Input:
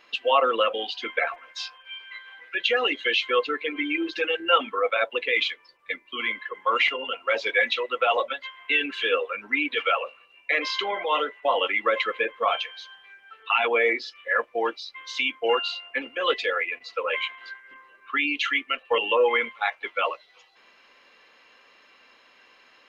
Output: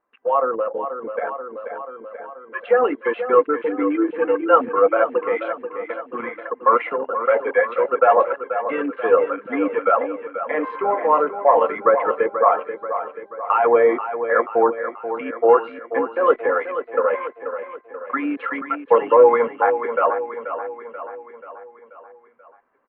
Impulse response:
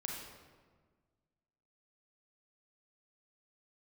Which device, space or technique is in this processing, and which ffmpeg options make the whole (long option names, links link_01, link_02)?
action camera in a waterproof case: -filter_complex "[0:a]asettb=1/sr,asplit=3[link_01][link_02][link_03];[link_01]atrim=end=0.554[link_04];[link_02]atrim=start=0.55:end=1.25,asetpts=PTS-STARTPTS,afade=type=in:duration=0.004:curve=qsin,afade=type=out:start_time=0.696:duration=0.004:curve=qsin,equalizer=frequency=1200:width=0.96:gain=-5[link_05];[link_03]atrim=start=1.246[link_06];[link_04][link_05]acrossfade=duration=0.004:curve1=hsin:curve2=qsin[link_07];[link_07][link_06]acrossfade=duration=0.004:curve1=qsin:curve2=hsin,afwtdn=0.0316,lowpass=frequency=1300:width=0.5412,lowpass=frequency=1300:width=1.3066,aecho=1:1:484|968|1452|1936|2420|2904:0.316|0.168|0.0888|0.0471|0.025|0.0132,dynaudnorm=framelen=130:gausssize=21:maxgain=8dB,volume=2dB" -ar 24000 -c:a aac -b:a 64k